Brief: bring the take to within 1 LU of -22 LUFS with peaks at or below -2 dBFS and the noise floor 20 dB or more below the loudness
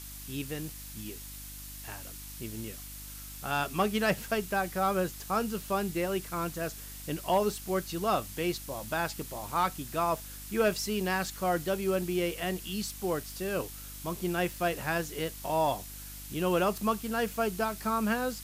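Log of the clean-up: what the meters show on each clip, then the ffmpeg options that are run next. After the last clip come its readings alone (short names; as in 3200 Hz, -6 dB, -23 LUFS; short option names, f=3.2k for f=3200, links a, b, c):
hum 50 Hz; harmonics up to 300 Hz; hum level -45 dBFS; noise floor -44 dBFS; noise floor target -52 dBFS; loudness -32.0 LUFS; peak -17.0 dBFS; loudness target -22.0 LUFS
-> -af "bandreject=f=50:t=h:w=4,bandreject=f=100:t=h:w=4,bandreject=f=150:t=h:w=4,bandreject=f=200:t=h:w=4,bandreject=f=250:t=h:w=4,bandreject=f=300:t=h:w=4"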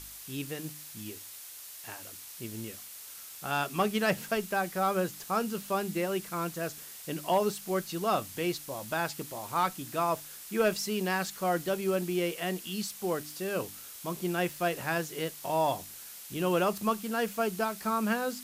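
hum none; noise floor -46 dBFS; noise floor target -52 dBFS
-> -af "afftdn=nr=6:nf=-46"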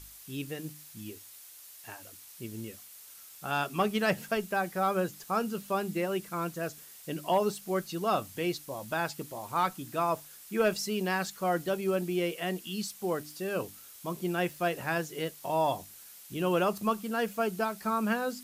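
noise floor -51 dBFS; noise floor target -52 dBFS
-> -af "afftdn=nr=6:nf=-51"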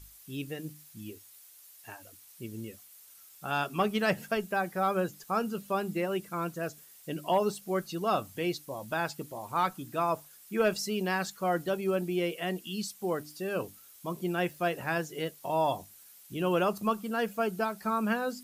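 noise floor -55 dBFS; loudness -32.0 LUFS; peak -17.5 dBFS; loudness target -22.0 LUFS
-> -af "volume=10dB"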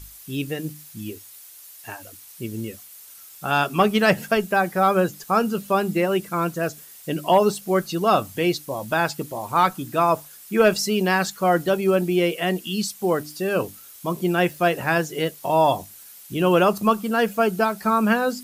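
loudness -22.0 LUFS; peak -7.5 dBFS; noise floor -45 dBFS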